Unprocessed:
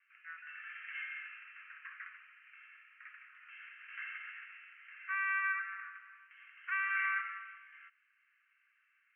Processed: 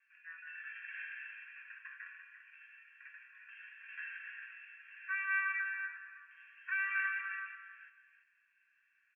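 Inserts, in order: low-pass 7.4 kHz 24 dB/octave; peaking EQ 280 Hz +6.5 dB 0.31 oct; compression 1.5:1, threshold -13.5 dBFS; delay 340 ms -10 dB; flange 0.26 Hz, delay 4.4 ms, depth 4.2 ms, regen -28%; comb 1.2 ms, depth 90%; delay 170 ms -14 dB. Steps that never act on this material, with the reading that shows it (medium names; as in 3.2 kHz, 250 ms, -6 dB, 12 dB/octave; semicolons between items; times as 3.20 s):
low-pass 7.4 kHz: input has nothing above 2.9 kHz; peaking EQ 280 Hz: input has nothing below 1.1 kHz; compression, threshold -13.5 dBFS: peak at its input -23.0 dBFS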